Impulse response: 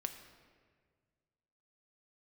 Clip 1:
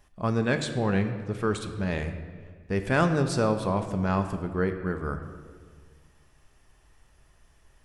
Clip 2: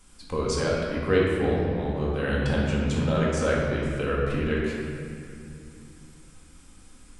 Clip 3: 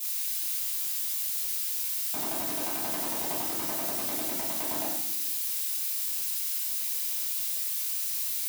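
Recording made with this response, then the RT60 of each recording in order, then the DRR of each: 1; 1.7 s, 2.6 s, non-exponential decay; 6.0, −4.5, −11.5 decibels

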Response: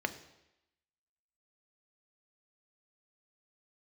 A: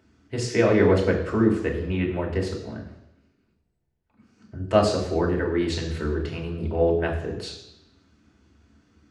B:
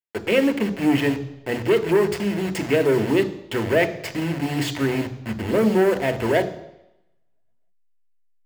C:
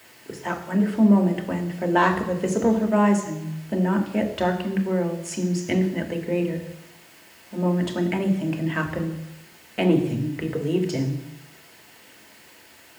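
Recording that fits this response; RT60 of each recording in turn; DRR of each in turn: B; 0.90, 0.90, 0.90 seconds; −1.5, 8.5, 3.5 decibels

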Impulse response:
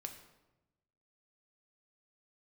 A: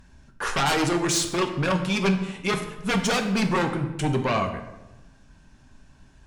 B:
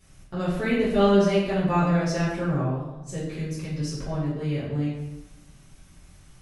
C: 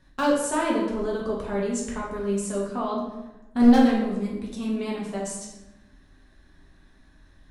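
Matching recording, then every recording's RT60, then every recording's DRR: A; 1.0, 1.0, 1.0 seconds; 4.5, −11.0, −5.5 decibels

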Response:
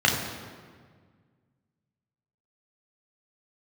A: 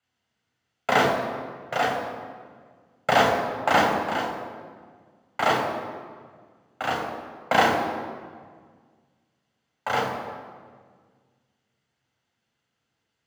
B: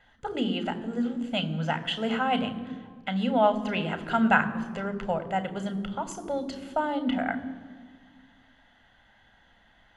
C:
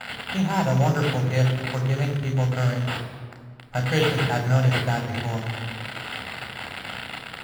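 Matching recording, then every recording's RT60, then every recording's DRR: A; 1.7, 1.7, 1.7 seconds; −1.5, 10.5, 4.0 decibels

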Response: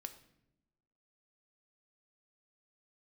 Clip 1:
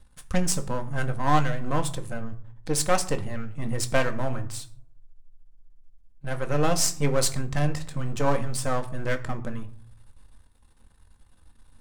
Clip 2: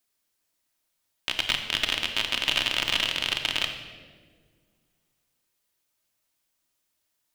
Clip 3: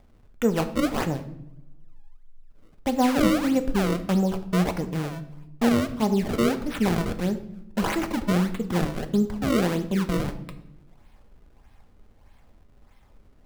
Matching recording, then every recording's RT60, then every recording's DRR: 3; 0.55 s, 1.7 s, non-exponential decay; 5.5, 4.0, 8.0 decibels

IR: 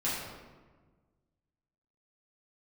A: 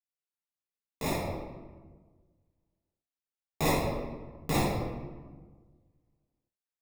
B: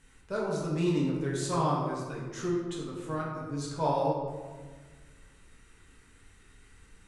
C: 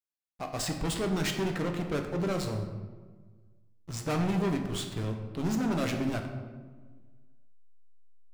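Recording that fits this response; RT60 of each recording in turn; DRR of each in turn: A; 1.4, 1.4, 1.4 seconds; −9.5, −5.5, 3.0 decibels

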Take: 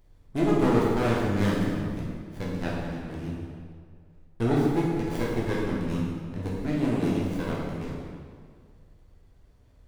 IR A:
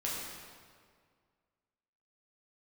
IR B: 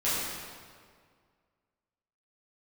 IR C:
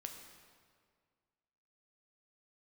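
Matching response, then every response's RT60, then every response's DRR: A; 1.9, 1.9, 1.9 seconds; −6.0, −12.0, 3.5 decibels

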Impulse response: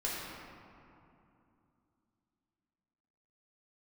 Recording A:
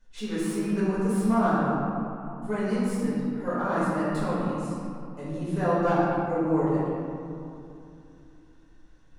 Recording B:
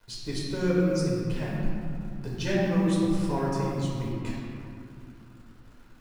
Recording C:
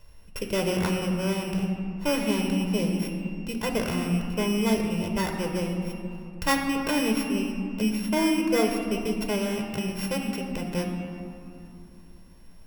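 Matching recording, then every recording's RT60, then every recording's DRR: B; 2.7, 2.7, 2.8 seconds; −11.5, −6.5, 3.0 decibels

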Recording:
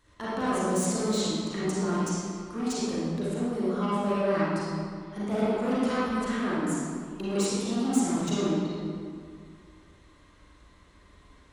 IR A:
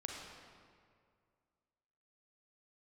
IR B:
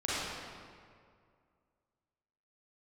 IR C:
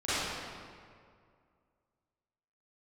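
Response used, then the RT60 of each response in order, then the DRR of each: B; 2.1, 2.1, 2.1 seconds; −0.5, −10.0, −16.5 decibels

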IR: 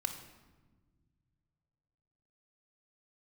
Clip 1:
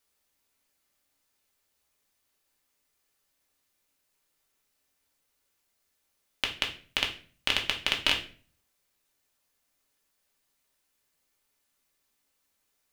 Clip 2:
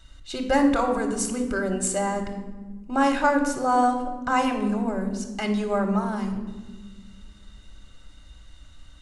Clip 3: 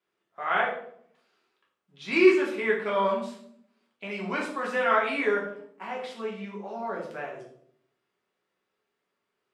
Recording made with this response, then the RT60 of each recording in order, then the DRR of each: 2; 0.45, 1.4, 0.65 seconds; 0.0, 4.0, −4.0 decibels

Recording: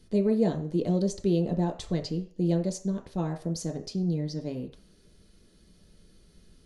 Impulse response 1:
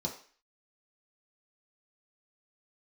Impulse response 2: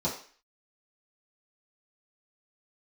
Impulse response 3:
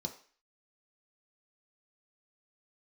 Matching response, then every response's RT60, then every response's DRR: 3; 0.45, 0.45, 0.45 seconds; −2.0, −9.0, 2.0 decibels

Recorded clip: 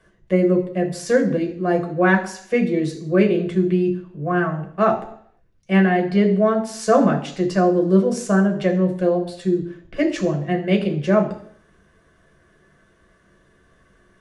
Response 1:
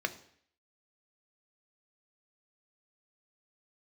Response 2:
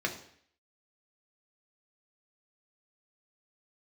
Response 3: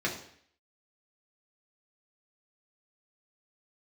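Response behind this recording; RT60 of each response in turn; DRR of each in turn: 2; 0.60, 0.60, 0.60 seconds; 8.0, 1.5, −3.0 decibels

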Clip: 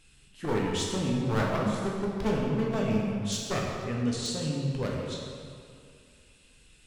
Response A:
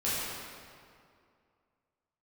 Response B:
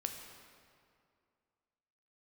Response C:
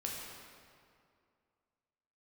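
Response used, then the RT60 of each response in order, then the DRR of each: C; 2.3, 2.3, 2.3 seconds; −11.0, 4.0, −2.5 decibels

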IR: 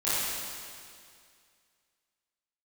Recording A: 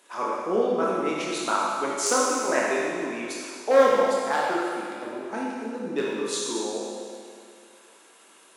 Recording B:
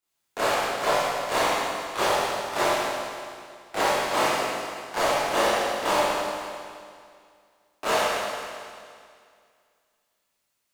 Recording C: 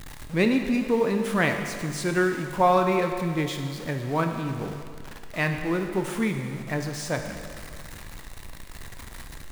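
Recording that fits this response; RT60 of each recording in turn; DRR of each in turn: B; 2.2, 2.2, 2.2 seconds; −5.5, −13.5, 4.5 decibels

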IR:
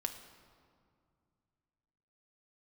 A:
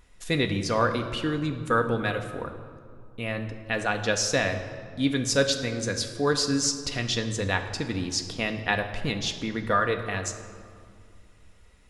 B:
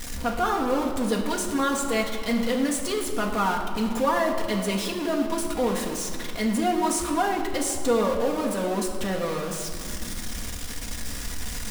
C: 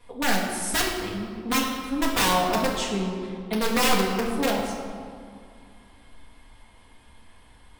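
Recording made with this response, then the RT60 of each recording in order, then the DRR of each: A; 2.2, 2.2, 2.2 seconds; 4.5, −0.5, −9.0 decibels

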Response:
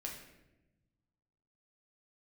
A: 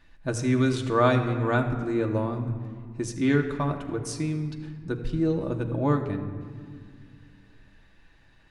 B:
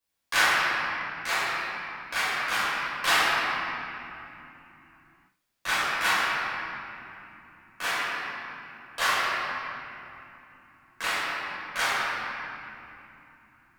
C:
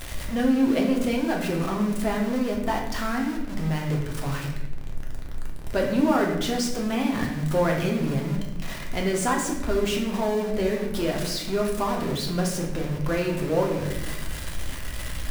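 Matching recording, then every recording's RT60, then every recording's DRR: C; 2.0, 2.9, 1.0 seconds; 2.0, −12.0, −1.0 decibels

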